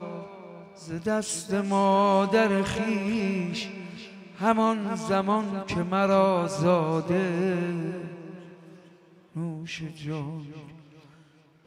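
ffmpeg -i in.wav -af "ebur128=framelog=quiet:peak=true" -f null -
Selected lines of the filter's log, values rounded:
Integrated loudness:
  I:         -26.1 LUFS
  Threshold: -37.5 LUFS
Loudness range:
  LRA:        12.1 LU
  Threshold: -47.0 LUFS
  LRA low:   -37.2 LUFS
  LRA high:  -25.1 LUFS
True peak:
  Peak:      -10.4 dBFS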